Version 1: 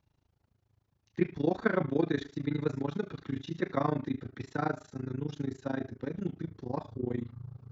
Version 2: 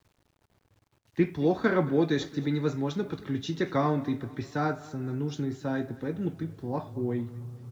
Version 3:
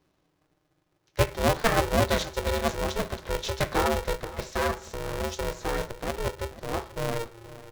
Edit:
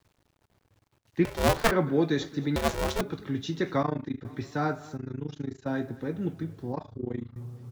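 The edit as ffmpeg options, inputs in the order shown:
-filter_complex "[2:a]asplit=2[s0][s1];[0:a]asplit=3[s2][s3][s4];[1:a]asplit=6[s5][s6][s7][s8][s9][s10];[s5]atrim=end=1.252[s11];[s0]atrim=start=1.248:end=1.712[s12];[s6]atrim=start=1.708:end=2.562[s13];[s1]atrim=start=2.558:end=3.012[s14];[s7]atrim=start=3.008:end=3.832[s15];[s2]atrim=start=3.828:end=4.252[s16];[s8]atrim=start=4.248:end=4.972[s17];[s3]atrim=start=4.968:end=5.662[s18];[s9]atrim=start=5.658:end=6.732[s19];[s4]atrim=start=6.728:end=7.362[s20];[s10]atrim=start=7.358[s21];[s11][s12]acrossfade=d=0.004:c1=hsin:c2=hsin[s22];[s22][s13]acrossfade=d=0.004:c1=hsin:c2=hsin[s23];[s23][s14]acrossfade=d=0.004:c1=hsin:c2=hsin[s24];[s24][s15]acrossfade=d=0.004:c1=hsin:c2=hsin[s25];[s25][s16]acrossfade=d=0.004:c1=hsin:c2=hsin[s26];[s26][s17]acrossfade=d=0.004:c1=hsin:c2=hsin[s27];[s27][s18]acrossfade=d=0.004:c1=hsin:c2=hsin[s28];[s28][s19]acrossfade=d=0.004:c1=hsin:c2=hsin[s29];[s29][s20]acrossfade=d=0.004:c1=hsin:c2=hsin[s30];[s30][s21]acrossfade=d=0.004:c1=hsin:c2=hsin"

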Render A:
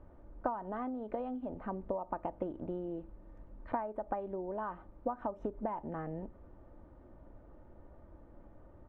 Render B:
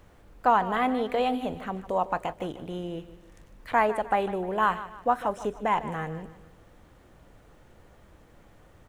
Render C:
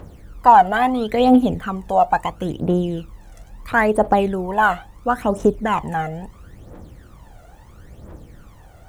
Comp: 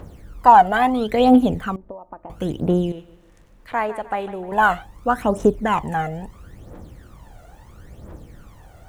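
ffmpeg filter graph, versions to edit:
-filter_complex "[2:a]asplit=3[s0][s1][s2];[s0]atrim=end=1.762[s3];[0:a]atrim=start=1.758:end=2.302[s4];[s1]atrim=start=2.298:end=2.922[s5];[1:a]atrim=start=2.918:end=4.522[s6];[s2]atrim=start=4.518[s7];[s3][s4]acrossfade=d=0.004:c1=hsin:c2=hsin[s8];[s8][s5]acrossfade=d=0.004:c1=hsin:c2=hsin[s9];[s9][s6]acrossfade=d=0.004:c1=hsin:c2=hsin[s10];[s10][s7]acrossfade=d=0.004:c1=hsin:c2=hsin"

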